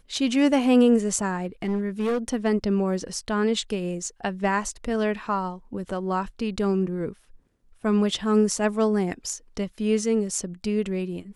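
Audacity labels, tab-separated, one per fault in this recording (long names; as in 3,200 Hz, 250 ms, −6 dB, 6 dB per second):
1.350000	2.340000	clipping −21 dBFS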